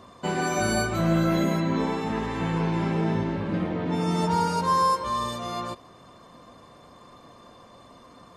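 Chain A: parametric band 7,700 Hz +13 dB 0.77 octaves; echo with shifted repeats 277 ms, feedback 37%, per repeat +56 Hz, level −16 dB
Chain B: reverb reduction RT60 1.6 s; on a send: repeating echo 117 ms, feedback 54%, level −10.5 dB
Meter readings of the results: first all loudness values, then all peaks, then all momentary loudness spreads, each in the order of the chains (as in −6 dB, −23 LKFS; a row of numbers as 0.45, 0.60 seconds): −24.5, −28.5 LKFS; −11.0, −14.0 dBFS; 8, 9 LU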